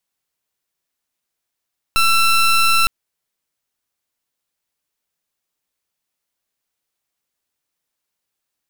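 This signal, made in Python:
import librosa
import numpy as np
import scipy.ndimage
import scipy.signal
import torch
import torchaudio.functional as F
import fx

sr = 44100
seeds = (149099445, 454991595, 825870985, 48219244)

y = fx.pulse(sr, length_s=0.91, hz=1340.0, level_db=-13.5, duty_pct=19)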